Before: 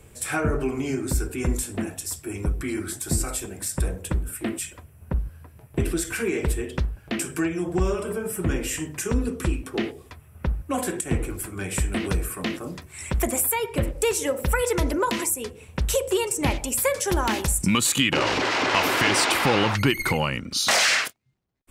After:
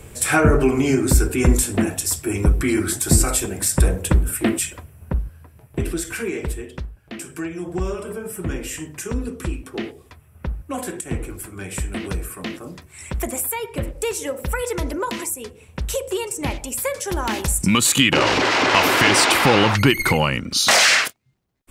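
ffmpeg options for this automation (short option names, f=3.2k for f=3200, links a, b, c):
-af "volume=22.5dB,afade=t=out:st=4.46:d=0.87:silence=0.375837,afade=t=out:st=6.16:d=0.82:silence=0.375837,afade=t=in:st=6.98:d=0.75:silence=0.473151,afade=t=in:st=17.12:d=0.85:silence=0.446684"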